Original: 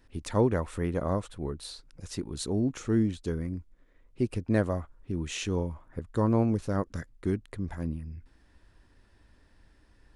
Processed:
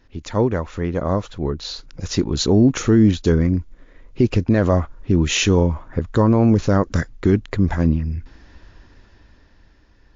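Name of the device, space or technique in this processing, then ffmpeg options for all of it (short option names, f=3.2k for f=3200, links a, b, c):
low-bitrate web radio: -af "dynaudnorm=f=310:g=11:m=12.5dB,alimiter=limit=-12dB:level=0:latency=1:release=28,volume=6dB" -ar 16000 -c:a libmp3lame -b:a 48k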